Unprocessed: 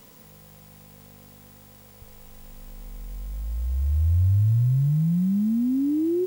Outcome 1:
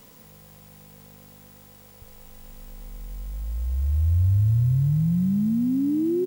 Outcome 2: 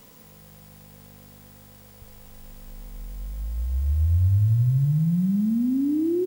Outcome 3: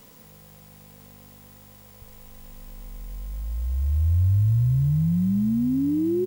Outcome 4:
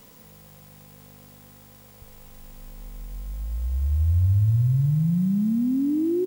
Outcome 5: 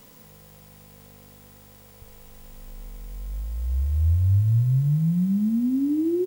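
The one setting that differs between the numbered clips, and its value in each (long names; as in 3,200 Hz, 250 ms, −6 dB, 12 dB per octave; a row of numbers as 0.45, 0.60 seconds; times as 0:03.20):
repeating echo, delay time: 465, 159, 817, 247, 62 milliseconds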